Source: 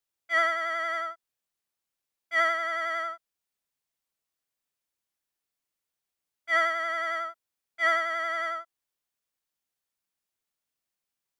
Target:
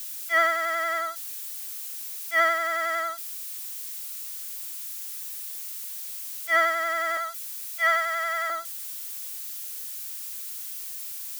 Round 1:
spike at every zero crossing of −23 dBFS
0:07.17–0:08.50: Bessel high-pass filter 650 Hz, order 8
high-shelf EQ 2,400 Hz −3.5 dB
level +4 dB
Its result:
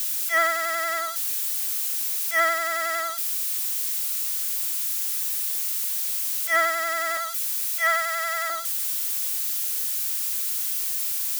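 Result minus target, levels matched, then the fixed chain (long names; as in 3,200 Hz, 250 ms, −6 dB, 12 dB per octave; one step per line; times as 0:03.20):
spike at every zero crossing: distortion +9 dB
spike at every zero crossing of −32.5 dBFS
0:07.17–0:08.50: Bessel high-pass filter 650 Hz, order 8
high-shelf EQ 2,400 Hz −3.5 dB
level +4 dB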